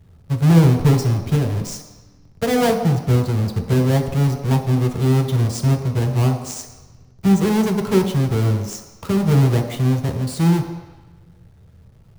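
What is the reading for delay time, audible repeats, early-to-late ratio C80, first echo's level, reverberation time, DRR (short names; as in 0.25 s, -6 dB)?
none, none, 8.5 dB, none, 1.1 s, 2.0 dB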